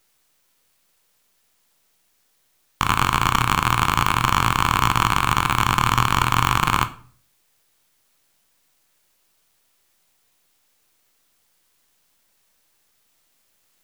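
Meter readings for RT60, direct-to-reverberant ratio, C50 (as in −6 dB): 0.45 s, 10.0 dB, 16.5 dB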